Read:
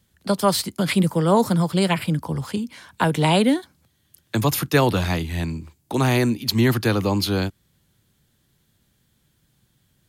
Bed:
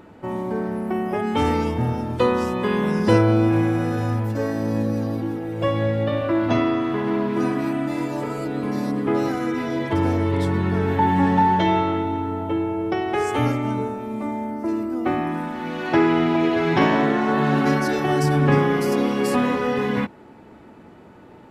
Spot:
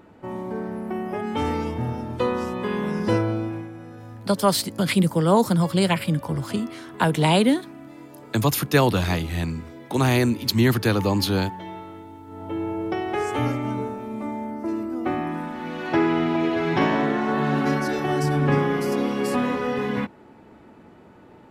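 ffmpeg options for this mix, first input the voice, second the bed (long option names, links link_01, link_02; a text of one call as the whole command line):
ffmpeg -i stem1.wav -i stem2.wav -filter_complex "[0:a]adelay=4000,volume=-0.5dB[link_01];[1:a]volume=10dB,afade=type=out:start_time=3.07:duration=0.62:silence=0.223872,afade=type=in:start_time=12.26:duration=0.42:silence=0.188365[link_02];[link_01][link_02]amix=inputs=2:normalize=0" out.wav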